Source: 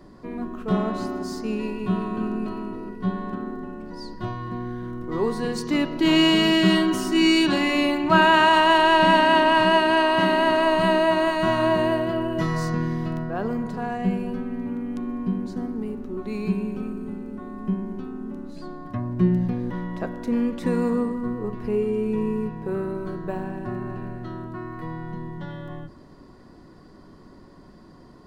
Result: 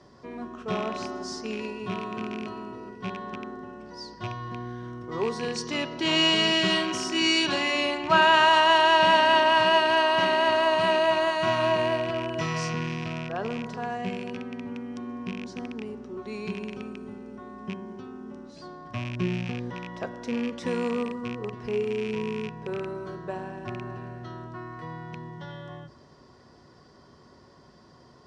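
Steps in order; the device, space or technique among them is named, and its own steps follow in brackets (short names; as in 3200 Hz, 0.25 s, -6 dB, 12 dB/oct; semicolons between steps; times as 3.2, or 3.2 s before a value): car door speaker with a rattle (rattling part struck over -28 dBFS, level -26 dBFS; speaker cabinet 82–8500 Hz, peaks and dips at 190 Hz -9 dB, 300 Hz -10 dB, 3200 Hz +4 dB, 5600 Hz +9 dB); gain -2 dB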